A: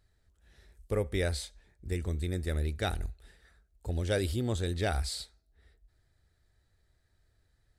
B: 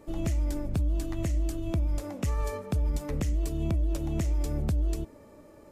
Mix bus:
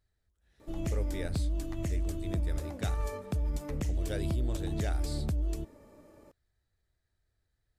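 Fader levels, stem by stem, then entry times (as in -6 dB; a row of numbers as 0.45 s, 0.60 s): -8.5 dB, -4.0 dB; 0.00 s, 0.60 s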